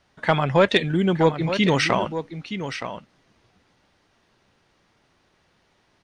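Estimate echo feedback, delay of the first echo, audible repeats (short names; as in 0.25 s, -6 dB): no steady repeat, 0.92 s, 1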